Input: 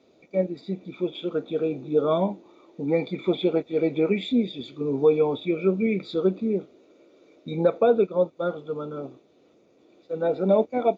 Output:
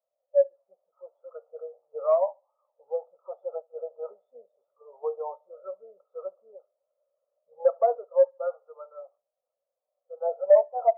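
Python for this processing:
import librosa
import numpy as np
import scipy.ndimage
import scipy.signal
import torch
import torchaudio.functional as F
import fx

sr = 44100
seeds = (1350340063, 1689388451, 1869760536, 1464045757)

y = scipy.signal.sosfilt(scipy.signal.ellip(3, 1.0, 40, [550.0, 1300.0], 'bandpass', fs=sr, output='sos'), x)
y = 10.0 ** (-15.0 / 20.0) * np.tanh(y / 10.0 ** (-15.0 / 20.0))
y = fx.echo_feedback(y, sr, ms=71, feedback_pct=42, wet_db=-22.0)
y = fx.spectral_expand(y, sr, expansion=1.5)
y = F.gain(torch.from_numpy(y), 7.5).numpy()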